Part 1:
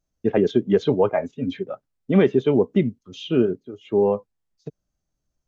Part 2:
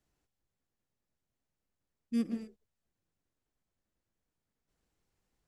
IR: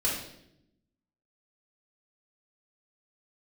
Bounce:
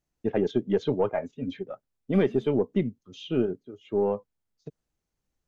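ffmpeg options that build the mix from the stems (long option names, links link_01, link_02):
-filter_complex "[0:a]aeval=exprs='0.562*(cos(1*acos(clip(val(0)/0.562,-1,1)))-cos(1*PI/2))+0.0224*(cos(4*acos(clip(val(0)/0.562,-1,1)))-cos(4*PI/2))':channel_layout=same,volume=-6.5dB[link_01];[1:a]alimiter=level_in=10.5dB:limit=-24dB:level=0:latency=1,volume=-10.5dB,volume=-5dB[link_02];[link_01][link_02]amix=inputs=2:normalize=0"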